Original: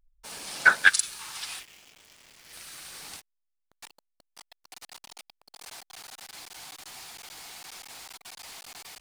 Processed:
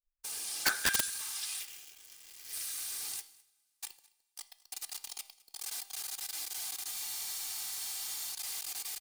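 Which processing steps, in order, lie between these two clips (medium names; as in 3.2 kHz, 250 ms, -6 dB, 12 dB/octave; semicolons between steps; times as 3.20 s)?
de-hum 132.8 Hz, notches 36; expander -50 dBFS; pre-emphasis filter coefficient 0.8; comb 2.5 ms, depth 40%; in parallel at -3 dB: compressor with a negative ratio -46 dBFS, ratio -0.5; on the sum: two-slope reverb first 0.75 s, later 2.8 s, from -18 dB, DRR 15.5 dB; integer overflow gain 20 dB; on a send: delay 210 ms -23.5 dB; on the sum: spectral freeze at 6.94 s, 1.39 s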